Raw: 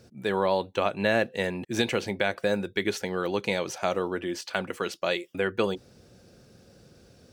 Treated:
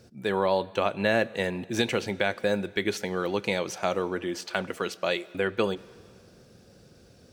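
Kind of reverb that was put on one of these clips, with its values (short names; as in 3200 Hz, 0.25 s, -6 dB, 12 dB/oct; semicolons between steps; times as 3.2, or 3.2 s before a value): plate-style reverb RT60 2.3 s, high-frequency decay 0.95×, DRR 19.5 dB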